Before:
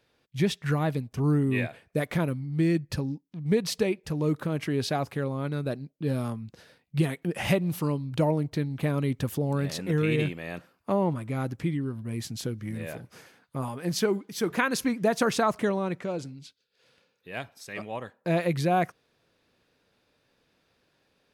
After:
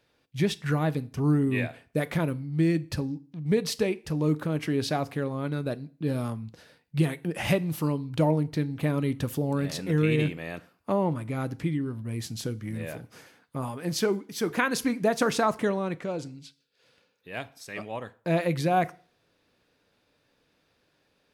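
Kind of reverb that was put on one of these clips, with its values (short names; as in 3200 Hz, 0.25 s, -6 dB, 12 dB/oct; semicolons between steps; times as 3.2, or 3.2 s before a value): FDN reverb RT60 0.42 s, low-frequency decay 1×, high-frequency decay 0.95×, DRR 14.5 dB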